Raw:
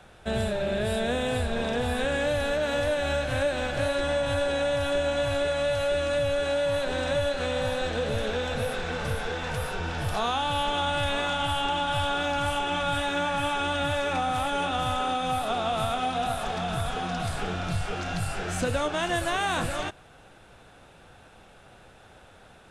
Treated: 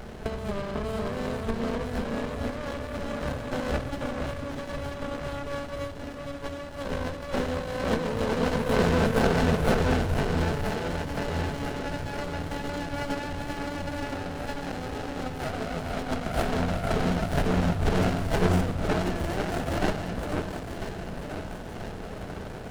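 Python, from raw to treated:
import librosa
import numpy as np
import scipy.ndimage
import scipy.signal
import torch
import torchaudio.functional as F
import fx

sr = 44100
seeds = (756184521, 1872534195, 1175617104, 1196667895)

y = fx.highpass(x, sr, hz=110.0, slope=12, at=(7.06, 9.38))
y = fx.over_compress(y, sr, threshold_db=-33.0, ratio=-0.5)
y = fx.echo_alternate(y, sr, ms=496, hz=1300.0, feedback_pct=71, wet_db=-2.5)
y = fx.room_shoebox(y, sr, seeds[0], volume_m3=3800.0, walls='furnished', distance_m=1.5)
y = fx.running_max(y, sr, window=33)
y = F.gain(torch.from_numpy(y), 5.5).numpy()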